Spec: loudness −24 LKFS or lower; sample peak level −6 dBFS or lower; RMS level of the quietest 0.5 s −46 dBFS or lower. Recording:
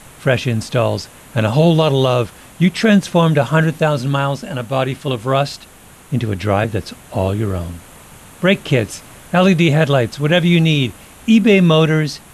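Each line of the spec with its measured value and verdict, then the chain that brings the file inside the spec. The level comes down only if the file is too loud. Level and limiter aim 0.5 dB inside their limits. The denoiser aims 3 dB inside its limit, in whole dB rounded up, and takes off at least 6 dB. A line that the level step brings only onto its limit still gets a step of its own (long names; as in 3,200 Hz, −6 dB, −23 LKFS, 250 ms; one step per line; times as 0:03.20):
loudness −16.0 LKFS: out of spec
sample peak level −2.5 dBFS: out of spec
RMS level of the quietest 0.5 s −42 dBFS: out of spec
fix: level −8.5 dB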